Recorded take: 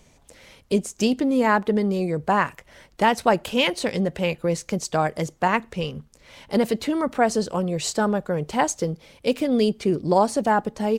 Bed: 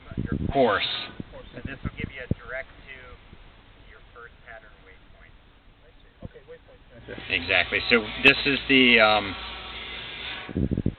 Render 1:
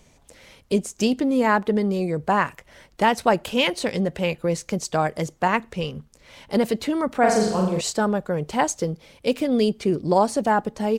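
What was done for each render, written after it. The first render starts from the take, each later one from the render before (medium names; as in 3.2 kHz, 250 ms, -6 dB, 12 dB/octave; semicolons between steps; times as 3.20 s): 7.19–7.81 s: flutter echo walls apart 7.3 m, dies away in 0.76 s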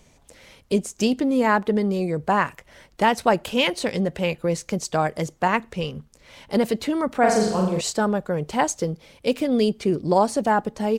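no audible change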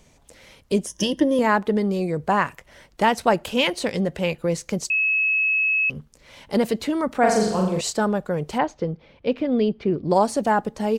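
0.86–1.39 s: rippled EQ curve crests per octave 1.2, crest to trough 15 dB; 4.90–5.90 s: bleep 2.58 kHz -17.5 dBFS; 8.58–10.11 s: distance through air 290 m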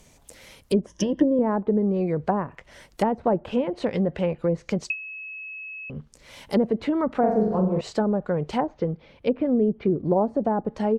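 low-pass that closes with the level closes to 590 Hz, closed at -17 dBFS; treble shelf 10 kHz +11.5 dB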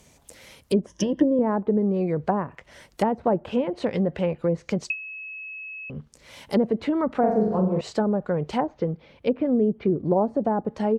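high-pass 49 Hz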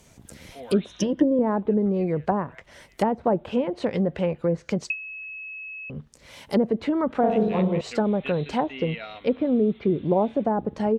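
add bed -20.5 dB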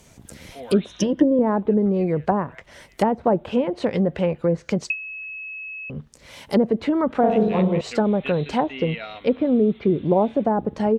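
trim +3 dB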